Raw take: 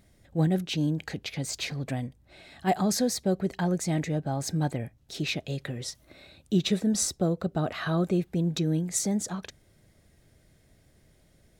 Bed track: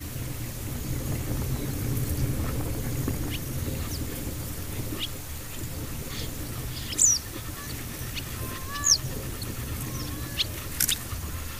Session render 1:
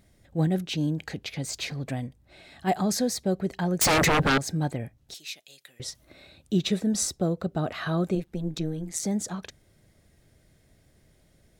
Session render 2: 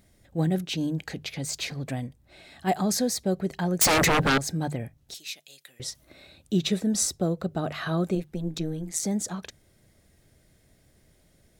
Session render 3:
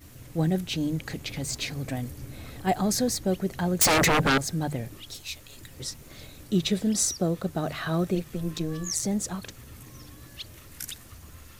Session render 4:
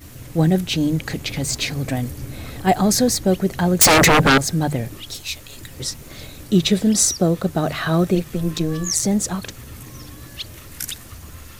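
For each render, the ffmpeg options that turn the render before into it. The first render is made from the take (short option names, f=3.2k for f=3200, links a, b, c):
-filter_complex "[0:a]asettb=1/sr,asplit=3[a][b][c];[a]atrim=end=3.814[d];[b]atrim=start=3.81:end=4.38,asetpts=PTS-STARTPTS,afade=t=in:d=0.004:c=qsin,afade=t=out:st=0.566:d=0.004:c=qsin,aeval=exprs='0.133*sin(PI/2*6.31*val(0)/0.133)':c=same[e];[c]atrim=start=4.376[f];[d][e]acrossfade=d=0.004:c1=hsin:c2=qsin[g];[g][f]acrossfade=d=0.004:c1=qsin:c2=hsin,asettb=1/sr,asplit=3[h][i][j];[h]atrim=end=5.144[k];[i]atrim=start=5.14:end=5.8,asetpts=PTS-STARTPTS,afade=t=in:d=0.004:c=qsin,afade=t=out:st=0.656:d=0.004:c=qsin,aderivative[l];[j]atrim=start=5.796[m];[k][l]acrossfade=d=0.004:c1=hsin:c2=qsin[n];[n][m]acrossfade=d=0.004:c1=qsin:c2=hsin,asettb=1/sr,asplit=3[o][p][q];[o]atrim=end=8.154[r];[p]atrim=start=8.15:end=9.03,asetpts=PTS-STARTPTS,afade=t=in:d=0.004:c=qsin,afade=t=out:st=0.876:d=0.004:c=qsin,tremolo=f=160:d=0.824[s];[q]atrim=start=9.026[t];[r][s]acrossfade=d=0.004:c1=hsin:c2=qsin[u];[u][t]acrossfade=d=0.004:c1=qsin:c2=hsin"
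-af "highshelf=f=6.7k:g=4,bandreject=f=50:t=h:w=6,bandreject=f=100:t=h:w=6,bandreject=f=150:t=h:w=6"
-filter_complex "[1:a]volume=-13dB[a];[0:a][a]amix=inputs=2:normalize=0"
-af "volume=8.5dB"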